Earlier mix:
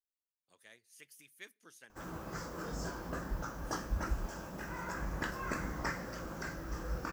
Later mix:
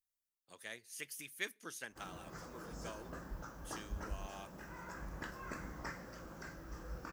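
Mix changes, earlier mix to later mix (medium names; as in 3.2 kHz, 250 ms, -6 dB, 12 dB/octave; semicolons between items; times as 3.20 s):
speech +10.5 dB; background -8.0 dB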